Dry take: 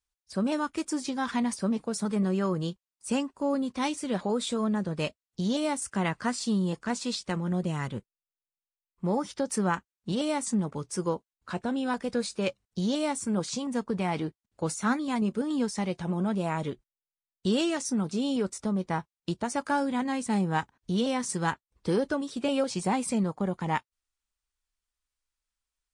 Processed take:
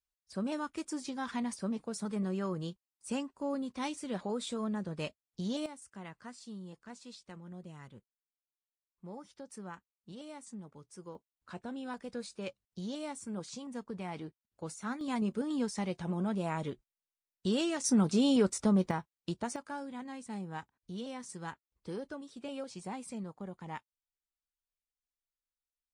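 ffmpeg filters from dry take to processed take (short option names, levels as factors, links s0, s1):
-af "asetnsamples=n=441:p=0,asendcmd='5.66 volume volume -18.5dB;11.15 volume volume -11.5dB;15.01 volume volume -5dB;17.84 volume volume 2dB;18.91 volume volume -5.5dB;19.56 volume volume -14dB',volume=0.422"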